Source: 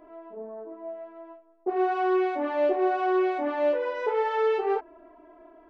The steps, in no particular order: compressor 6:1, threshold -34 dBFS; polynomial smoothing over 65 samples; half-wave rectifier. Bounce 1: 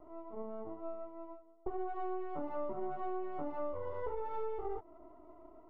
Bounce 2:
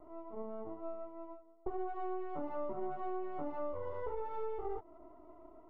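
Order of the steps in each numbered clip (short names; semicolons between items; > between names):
half-wave rectifier > polynomial smoothing > compressor; half-wave rectifier > compressor > polynomial smoothing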